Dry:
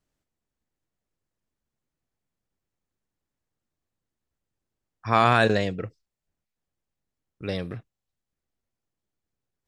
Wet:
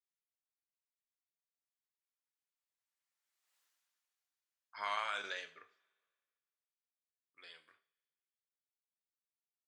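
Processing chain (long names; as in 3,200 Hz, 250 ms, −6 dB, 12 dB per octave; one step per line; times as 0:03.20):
source passing by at 0:03.61, 35 m/s, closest 4.2 metres
high-pass filter 1,400 Hz 12 dB per octave
brickwall limiter −39 dBFS, peak gain reduction 5.5 dB
coupled-rooms reverb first 0.39 s, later 1.9 s, from −27 dB, DRR 7 dB
level +12.5 dB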